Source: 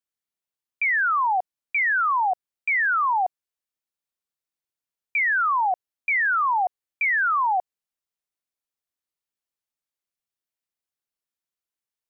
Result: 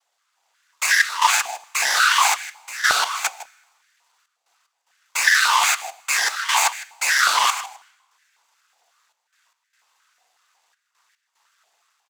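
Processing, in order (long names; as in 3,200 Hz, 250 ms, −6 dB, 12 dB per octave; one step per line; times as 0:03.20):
automatic gain control gain up to 7 dB
sine wavefolder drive 16 dB, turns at −15 dBFS
cochlear-implant simulation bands 16
flanger 0.2 Hz, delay 3.8 ms, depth 1.1 ms, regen −71%
half-wave rectification
gate pattern "xxxxx.x." 74 BPM −12 dB
single-tap delay 156 ms −17 dB
convolution reverb RT60 1.1 s, pre-delay 5 ms, DRR 20 dB
boost into a limiter +15 dB
high-pass on a step sequencer 5.5 Hz 730–1,700 Hz
level −4 dB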